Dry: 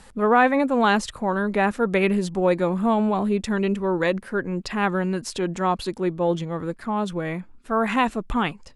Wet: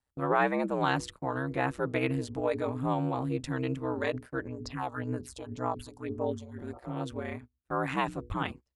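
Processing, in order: 6.48–6.98 spectral repair 380–1400 Hz both; notches 60/120/180/240/300/360/420 Hz; gate -34 dBFS, range -29 dB; 4.48–6.59 phaser stages 4, 1.9 Hz, lowest notch 270–3600 Hz; ring modulator 65 Hz; gain -6 dB

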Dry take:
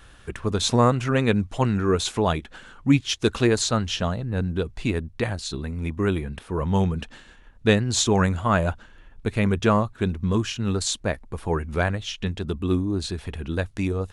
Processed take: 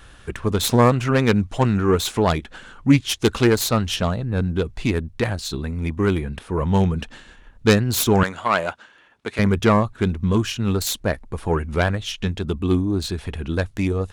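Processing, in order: self-modulated delay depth 0.14 ms; 8.23–9.39 weighting filter A; gain +3.5 dB

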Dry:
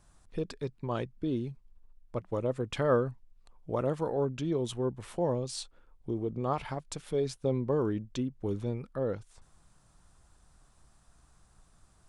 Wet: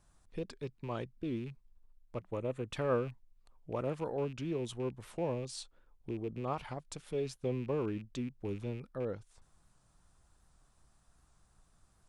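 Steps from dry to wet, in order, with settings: rattling part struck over -37 dBFS, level -39 dBFS; 2.28–2.69 bell 5100 Hz -11 dB 0.28 oct; record warp 78 rpm, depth 100 cents; gain -5.5 dB

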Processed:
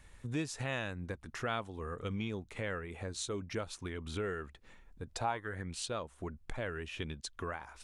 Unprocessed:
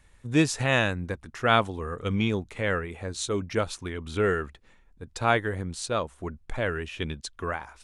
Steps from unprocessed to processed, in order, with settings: 5.07–5.89 bell 510 Hz -> 3400 Hz +14 dB 0.39 oct; compressor 2.5:1, threshold -42 dBFS, peak gain reduction 20 dB; gain +1 dB

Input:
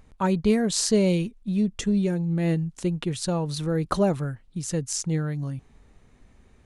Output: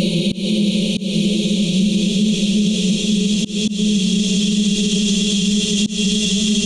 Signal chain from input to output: resonant high shelf 2500 Hz +9.5 dB, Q 3; Paulstretch 27×, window 1.00 s, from 1.4; auto swell 0.185 s; maximiser +19 dB; gain -7.5 dB

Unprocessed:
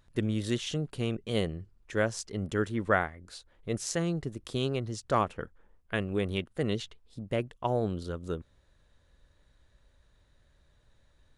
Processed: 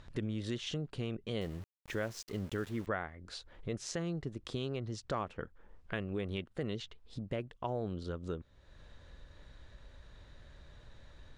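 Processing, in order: LPF 5600 Hz 12 dB/oct; in parallel at -1 dB: limiter -23 dBFS, peak gain reduction 11 dB; on the sum: compressor 2:1, threshold -53 dBFS, peak gain reduction 19 dB; 1.41–2.87 sample gate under -53.5 dBFS; gain +5 dB

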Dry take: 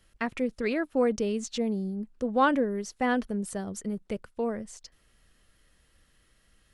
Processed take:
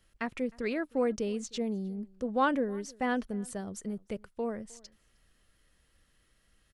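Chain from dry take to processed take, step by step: outdoor echo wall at 53 m, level -25 dB; gain -4 dB

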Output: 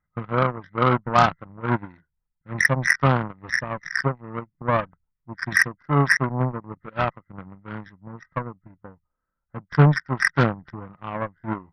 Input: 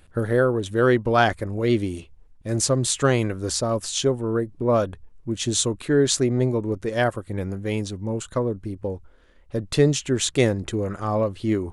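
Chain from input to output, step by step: nonlinear frequency compression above 1200 Hz 4:1; added harmonics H 5 -30 dB, 7 -16 dB, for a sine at -4.5 dBFS; fifteen-band EQ 160 Hz +11 dB, 400 Hz -7 dB, 1000 Hz +7 dB; gain -1 dB

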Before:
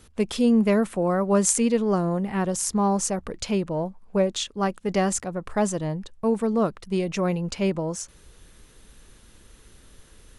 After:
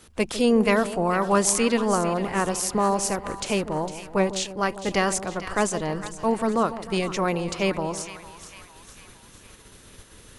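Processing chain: spectral limiter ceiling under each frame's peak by 13 dB; on a send: split-band echo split 900 Hz, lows 0.152 s, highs 0.455 s, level -12 dB

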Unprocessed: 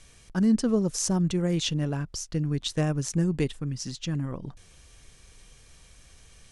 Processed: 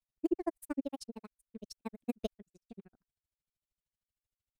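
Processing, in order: speed glide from 163% -> 121%; grains 44 ms, grains 13/s, spray 26 ms, pitch spread up and down by 0 st; upward expander 2.5:1, over -46 dBFS; gain -3.5 dB

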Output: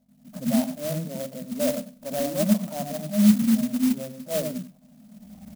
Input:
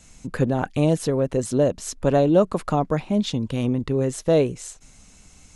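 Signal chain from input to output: recorder AGC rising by 22 dB/s; spectral noise reduction 11 dB; in parallel at -2 dB: compressor, threshold -31 dBFS, peak gain reduction 18 dB; on the sum: transient shaper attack -12 dB, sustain +5 dB; wavefolder -13 dBFS; hum 50 Hz, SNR 28 dB; double band-pass 380 Hz, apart 1.4 oct; feedback echo 96 ms, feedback 22%, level -17.5 dB; on a send at -11 dB: reverb RT60 0.15 s, pre-delay 74 ms; on the sum: careless resampling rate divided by 8×, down filtered, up hold; clock jitter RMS 0.1 ms

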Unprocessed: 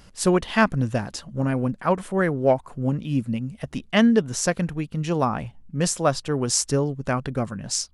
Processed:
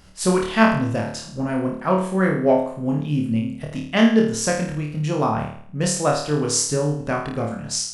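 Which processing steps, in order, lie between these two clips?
flutter echo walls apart 4.6 m, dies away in 0.57 s; gain -1 dB

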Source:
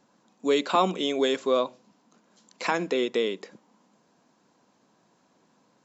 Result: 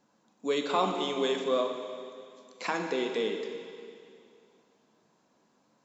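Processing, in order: plate-style reverb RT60 2.4 s, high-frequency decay 1×, DRR 3.5 dB; gain -5.5 dB

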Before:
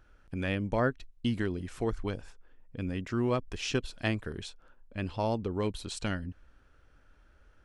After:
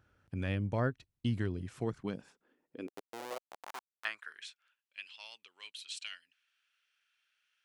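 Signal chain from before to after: 2.87–4.05 Schmitt trigger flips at -26.5 dBFS; high-pass sweep 100 Hz -> 2700 Hz, 1.58–4.8; gain -6 dB

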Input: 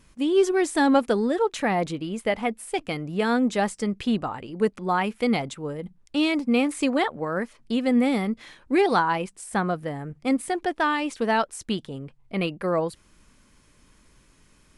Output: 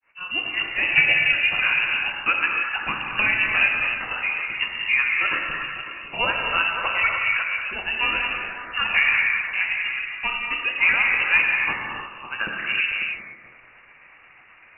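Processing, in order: repeated pitch sweeps -10.5 st, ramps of 0.32 s; HPF 210 Hz; resonant low shelf 490 Hz -8 dB, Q 1.5; frequency shift -300 Hz; AGC gain up to 7 dB; grains 0.242 s, grains 8.2/s, spray 26 ms, pitch spread up and down by 0 st; delay with a stepping band-pass 0.182 s, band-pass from 770 Hz, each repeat 0.7 oct, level -5 dB; non-linear reverb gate 0.34 s flat, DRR -0.5 dB; inverted band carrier 2800 Hz; mismatched tape noise reduction encoder only; gain -1.5 dB

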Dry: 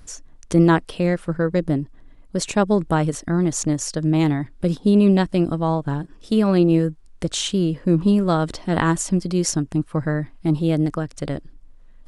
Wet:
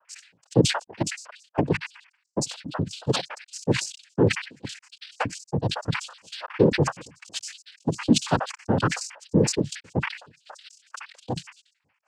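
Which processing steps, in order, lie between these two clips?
random spectral dropouts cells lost 85%; noise vocoder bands 8; sustainer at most 110 dB/s

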